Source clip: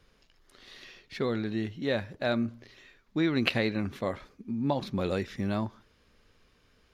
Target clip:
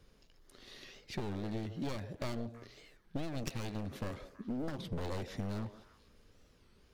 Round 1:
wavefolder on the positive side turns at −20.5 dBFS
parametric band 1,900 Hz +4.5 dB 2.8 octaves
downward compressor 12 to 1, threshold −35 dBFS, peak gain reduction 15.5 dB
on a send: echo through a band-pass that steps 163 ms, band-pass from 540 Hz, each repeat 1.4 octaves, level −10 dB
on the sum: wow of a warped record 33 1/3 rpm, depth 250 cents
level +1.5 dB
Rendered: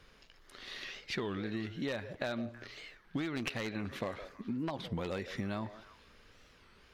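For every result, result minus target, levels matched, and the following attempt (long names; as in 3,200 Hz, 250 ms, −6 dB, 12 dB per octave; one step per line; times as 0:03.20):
wavefolder on the positive side: distortion −18 dB; 2,000 Hz band +6.5 dB
wavefolder on the positive side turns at −31.5 dBFS
parametric band 1,900 Hz +4.5 dB 2.8 octaves
downward compressor 12 to 1, threshold −35 dBFS, peak gain reduction 15 dB
on a send: echo through a band-pass that steps 163 ms, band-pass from 540 Hz, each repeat 1.4 octaves, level −10 dB
on the sum: wow of a warped record 33 1/3 rpm, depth 250 cents
level +1.5 dB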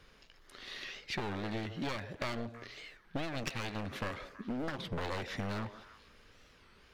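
2,000 Hz band +7.5 dB
wavefolder on the positive side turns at −31.5 dBFS
parametric band 1,900 Hz −7 dB 2.8 octaves
downward compressor 12 to 1, threshold −35 dBFS, peak gain reduction 12.5 dB
on a send: echo through a band-pass that steps 163 ms, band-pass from 540 Hz, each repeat 1.4 octaves, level −10 dB
on the sum: wow of a warped record 33 1/3 rpm, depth 250 cents
level +1.5 dB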